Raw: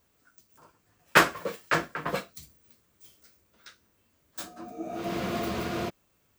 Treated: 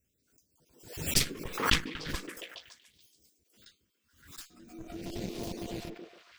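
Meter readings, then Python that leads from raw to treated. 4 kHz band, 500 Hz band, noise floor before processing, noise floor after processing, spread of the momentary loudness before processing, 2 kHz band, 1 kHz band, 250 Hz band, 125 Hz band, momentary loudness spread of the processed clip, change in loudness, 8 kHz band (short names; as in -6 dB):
+2.0 dB, -9.5 dB, -70 dBFS, -77 dBFS, 19 LU, -8.5 dB, -10.5 dB, -5.0 dB, -1.0 dB, 21 LU, -4.5 dB, +3.5 dB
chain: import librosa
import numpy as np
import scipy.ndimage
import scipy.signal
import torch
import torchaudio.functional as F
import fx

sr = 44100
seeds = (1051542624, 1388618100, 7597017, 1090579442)

y = fx.spec_dropout(x, sr, seeds[0], share_pct=33)
y = fx.cheby_harmonics(y, sr, harmonics=(3, 4), levels_db=(-6, -6), full_scale_db=-9.5)
y = fx.echo_stepped(y, sr, ms=141, hz=340.0, octaves=0.7, feedback_pct=70, wet_db=-1.5)
y = fx.phaser_stages(y, sr, stages=2, low_hz=630.0, high_hz=1300.0, hz=0.41, feedback_pct=30)
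y = fx.pre_swell(y, sr, db_per_s=97.0)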